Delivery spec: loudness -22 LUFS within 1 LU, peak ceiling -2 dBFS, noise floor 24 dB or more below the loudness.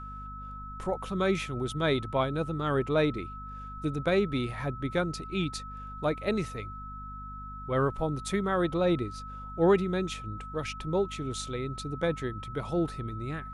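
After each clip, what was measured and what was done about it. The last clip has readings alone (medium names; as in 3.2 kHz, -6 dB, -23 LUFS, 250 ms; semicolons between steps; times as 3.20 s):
hum 50 Hz; highest harmonic 250 Hz; hum level -42 dBFS; steady tone 1.3 kHz; tone level -41 dBFS; loudness -30.5 LUFS; peak level -12.5 dBFS; loudness target -22.0 LUFS
-> de-hum 50 Hz, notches 5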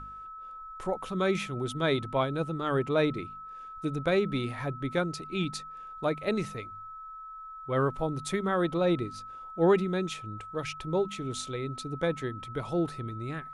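hum not found; steady tone 1.3 kHz; tone level -41 dBFS
-> band-stop 1.3 kHz, Q 30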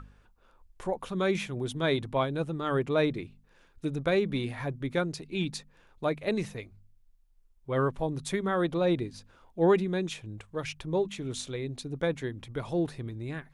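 steady tone not found; loudness -31.0 LUFS; peak level -13.0 dBFS; loudness target -22.0 LUFS
-> trim +9 dB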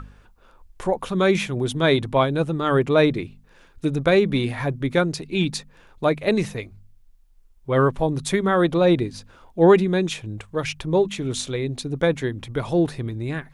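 loudness -22.0 LUFS; peak level -4.0 dBFS; noise floor -54 dBFS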